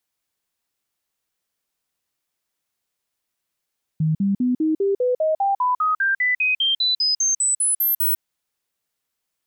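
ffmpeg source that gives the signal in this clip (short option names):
-f lavfi -i "aevalsrc='0.15*clip(min(mod(t,0.2),0.15-mod(t,0.2))/0.005,0,1)*sin(2*PI*157*pow(2,floor(t/0.2)/3)*mod(t,0.2))':d=4.2:s=44100"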